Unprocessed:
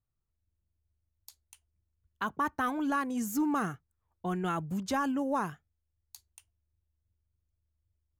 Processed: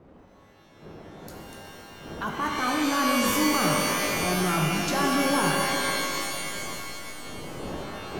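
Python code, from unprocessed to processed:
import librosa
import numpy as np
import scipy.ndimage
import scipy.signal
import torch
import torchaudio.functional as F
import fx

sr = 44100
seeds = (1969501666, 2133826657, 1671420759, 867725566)

p1 = fx.dmg_wind(x, sr, seeds[0], corner_hz=400.0, level_db=-47.0)
p2 = fx.low_shelf(p1, sr, hz=92.0, db=-8.0)
p3 = fx.level_steps(p2, sr, step_db=13)
p4 = p2 + F.gain(torch.from_numpy(p3), -1.0).numpy()
p5 = fx.transient(p4, sr, attack_db=-3, sustain_db=9)
p6 = p5 + fx.echo_stepped(p5, sr, ms=242, hz=3200.0, octaves=-1.4, feedback_pct=70, wet_db=-9.5, dry=0)
y = fx.rev_shimmer(p6, sr, seeds[1], rt60_s=2.9, semitones=12, shimmer_db=-2, drr_db=0.0)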